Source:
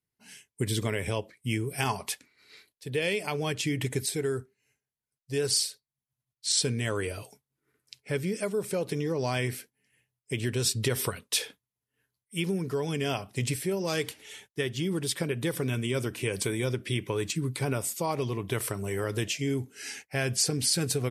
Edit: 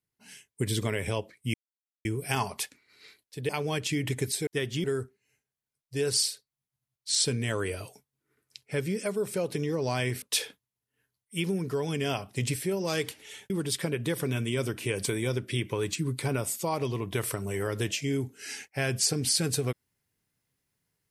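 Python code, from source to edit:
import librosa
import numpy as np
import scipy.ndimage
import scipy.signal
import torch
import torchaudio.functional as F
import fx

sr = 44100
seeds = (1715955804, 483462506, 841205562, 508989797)

y = fx.edit(x, sr, fx.insert_silence(at_s=1.54, length_s=0.51),
    fx.cut(start_s=2.98, length_s=0.25),
    fx.cut(start_s=9.59, length_s=1.63),
    fx.move(start_s=14.5, length_s=0.37, to_s=4.21), tone=tone)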